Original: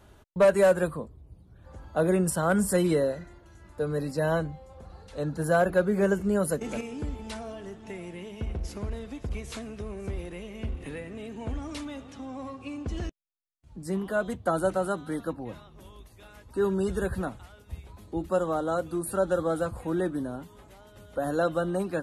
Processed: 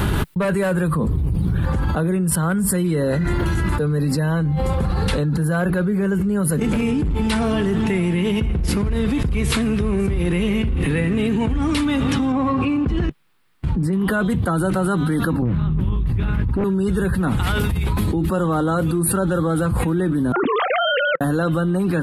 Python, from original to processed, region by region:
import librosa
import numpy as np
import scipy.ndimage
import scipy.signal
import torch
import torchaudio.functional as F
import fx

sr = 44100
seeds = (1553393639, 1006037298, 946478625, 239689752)

y = fx.chain(x, sr, fx.low_shelf(hz=160.0, db=9.5),
    fx.clip_hard(threshold_db=-26.5), at=(6.66, 7.16))
y = fx.chain(y, sr, fx.lowpass(hz=1500.0, slope=6),
    fx.low_shelf(hz=370.0, db=-5.0), at=(12.32, 13.93))
y = fx.chain(y, sr, fx.bass_treble(bass_db=14, treble_db=-15),
    fx.doppler_dist(depth_ms=0.68), at=(15.42, 16.64))
y = fx.chain(y, sr, fx.sine_speech(),
    fx.over_compress(threshold_db=-51.0, ratio=-0.5), at=(20.32, 21.21))
y = fx.graphic_eq_15(y, sr, hz=(160, 630, 6300), db=(7, -10, -10))
y = fx.env_flatten(y, sr, amount_pct=100)